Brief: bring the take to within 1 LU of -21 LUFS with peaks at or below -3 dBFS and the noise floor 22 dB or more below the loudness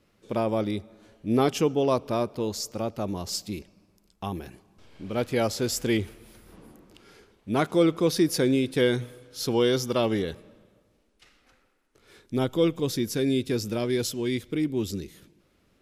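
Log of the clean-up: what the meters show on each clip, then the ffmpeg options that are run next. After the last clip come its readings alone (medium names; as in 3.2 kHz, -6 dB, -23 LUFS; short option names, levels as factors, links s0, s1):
loudness -26.5 LUFS; peak level -10.0 dBFS; loudness target -21.0 LUFS
-> -af "volume=1.88"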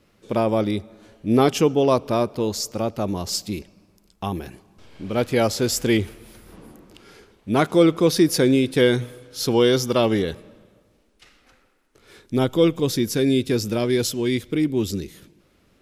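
loudness -21.0 LUFS; peak level -4.5 dBFS; noise floor -61 dBFS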